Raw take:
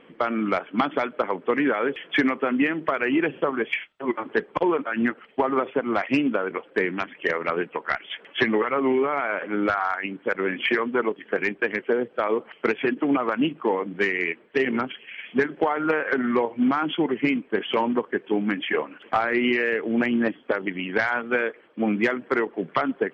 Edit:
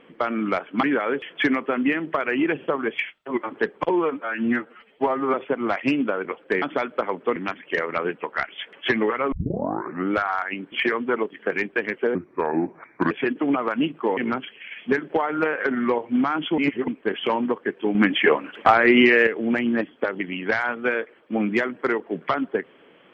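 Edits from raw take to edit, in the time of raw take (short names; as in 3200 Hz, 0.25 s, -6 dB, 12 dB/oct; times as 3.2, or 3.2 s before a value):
0.83–1.57 move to 6.88
4.64–5.6 stretch 1.5×
8.84 tape start 0.79 s
10.24–10.58 cut
12.01–12.72 speed 74%
13.78–14.64 cut
17.05–17.35 reverse
18.42–19.74 gain +7 dB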